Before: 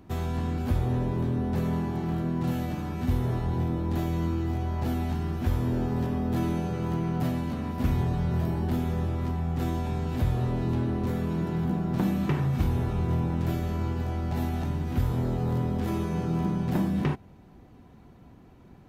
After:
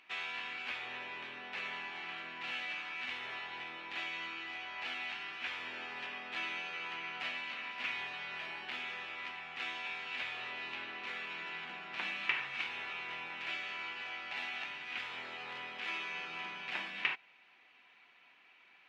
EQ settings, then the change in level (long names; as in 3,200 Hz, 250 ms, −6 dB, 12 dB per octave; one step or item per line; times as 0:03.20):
high-pass with resonance 2,500 Hz, resonance Q 3.2
head-to-tape spacing loss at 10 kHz 30 dB
high-shelf EQ 5,800 Hz −5 dB
+11.0 dB